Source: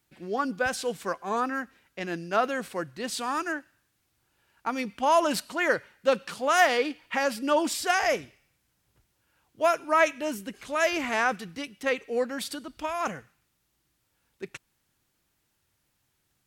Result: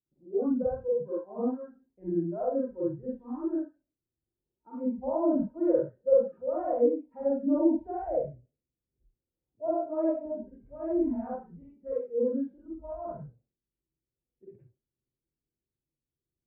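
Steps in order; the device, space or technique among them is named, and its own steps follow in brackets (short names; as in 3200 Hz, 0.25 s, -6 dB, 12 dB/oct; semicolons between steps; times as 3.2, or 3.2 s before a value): next room (LPF 510 Hz 24 dB/oct; reverb RT60 0.40 s, pre-delay 40 ms, DRR -7 dB); spectral noise reduction 18 dB; 10.59–12.47 bell 550 Hz -5.5 dB 0.67 oct; gain -2 dB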